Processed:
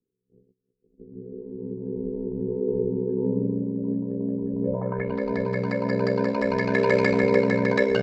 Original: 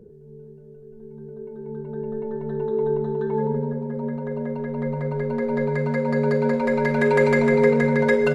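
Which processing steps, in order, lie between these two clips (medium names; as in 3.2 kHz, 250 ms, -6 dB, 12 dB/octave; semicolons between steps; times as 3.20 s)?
gate -39 dBFS, range -36 dB; ring modulator 31 Hz; tape speed +4%; low-pass sweep 320 Hz -> 5.2 kHz, 4.60–5.21 s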